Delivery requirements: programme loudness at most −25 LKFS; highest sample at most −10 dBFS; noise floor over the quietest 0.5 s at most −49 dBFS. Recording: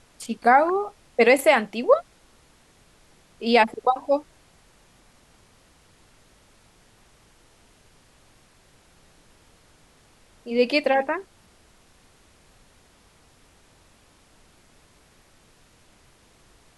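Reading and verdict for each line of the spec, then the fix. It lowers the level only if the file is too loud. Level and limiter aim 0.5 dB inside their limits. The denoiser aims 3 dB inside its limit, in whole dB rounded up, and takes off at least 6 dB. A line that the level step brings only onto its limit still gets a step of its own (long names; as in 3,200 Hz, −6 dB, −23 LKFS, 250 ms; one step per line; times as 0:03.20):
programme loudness −21.5 LKFS: out of spec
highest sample −5.5 dBFS: out of spec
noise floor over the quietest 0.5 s −57 dBFS: in spec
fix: level −4 dB
brickwall limiter −10.5 dBFS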